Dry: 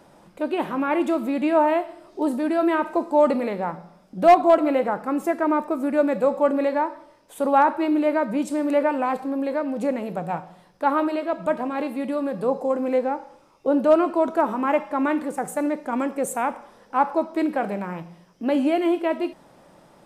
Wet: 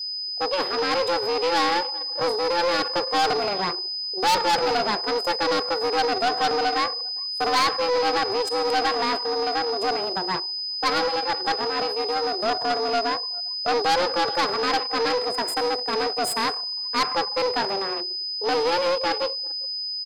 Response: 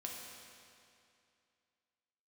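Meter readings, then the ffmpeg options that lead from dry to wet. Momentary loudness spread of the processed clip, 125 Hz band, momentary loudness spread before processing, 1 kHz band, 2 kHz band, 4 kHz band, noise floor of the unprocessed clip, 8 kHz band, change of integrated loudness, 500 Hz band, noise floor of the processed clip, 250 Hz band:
5 LU, −3.5 dB, 10 LU, +0.5 dB, +5.0 dB, +22.0 dB, −55 dBFS, +6.0 dB, −0.5 dB, −2.5 dB, −30 dBFS, −11.0 dB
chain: -filter_complex "[0:a]afreqshift=190,asplit=2[link_01][link_02];[link_02]lowshelf=frequency=330:gain=-9.5[link_03];[1:a]atrim=start_sample=2205,highshelf=frequency=4100:gain=11[link_04];[link_03][link_04]afir=irnorm=-1:irlink=0,volume=-15dB[link_05];[link_01][link_05]amix=inputs=2:normalize=0,aeval=exprs='0.794*(cos(1*acos(clip(val(0)/0.794,-1,1)))-cos(1*PI/2))+0.0631*(cos(6*acos(clip(val(0)/0.794,-1,1)))-cos(6*PI/2))+0.178*(cos(8*acos(clip(val(0)/0.794,-1,1)))-cos(8*PI/2))':channel_layout=same,aeval=exprs='val(0)+0.02*sin(2*PI*5000*n/s)':channel_layout=same,highpass=frequency=120:width=0.5412,highpass=frequency=120:width=1.3066,aecho=1:1:399:0.075,asoftclip=type=tanh:threshold=-17.5dB,anlmdn=10,equalizer=frequency=4500:width_type=o:width=0.47:gain=11"

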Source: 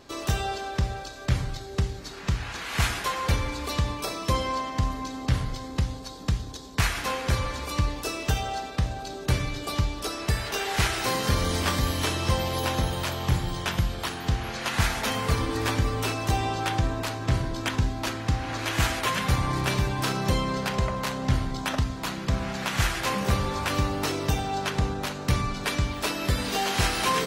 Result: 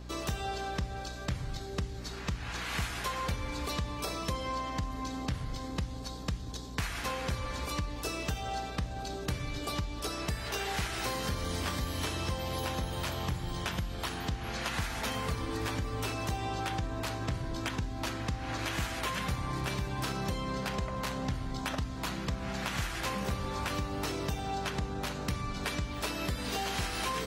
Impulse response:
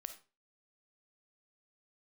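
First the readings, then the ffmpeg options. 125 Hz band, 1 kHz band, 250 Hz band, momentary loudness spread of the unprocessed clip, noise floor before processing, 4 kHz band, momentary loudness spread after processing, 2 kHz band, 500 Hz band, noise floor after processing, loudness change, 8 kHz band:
−9.0 dB, −7.0 dB, −6.5 dB, 5 LU, −38 dBFS, −7.0 dB, 4 LU, −7.5 dB, −7.0 dB, −40 dBFS, −7.5 dB, −7.5 dB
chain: -af "acompressor=threshold=-29dB:ratio=4,aeval=exprs='val(0)+0.00891*(sin(2*PI*60*n/s)+sin(2*PI*2*60*n/s)/2+sin(2*PI*3*60*n/s)/3+sin(2*PI*4*60*n/s)/4+sin(2*PI*5*60*n/s)/5)':channel_layout=same,volume=-2.5dB"

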